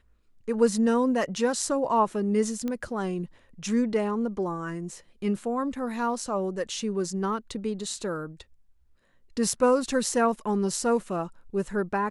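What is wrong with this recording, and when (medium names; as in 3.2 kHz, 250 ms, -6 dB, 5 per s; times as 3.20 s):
2.68 s: pop -19 dBFS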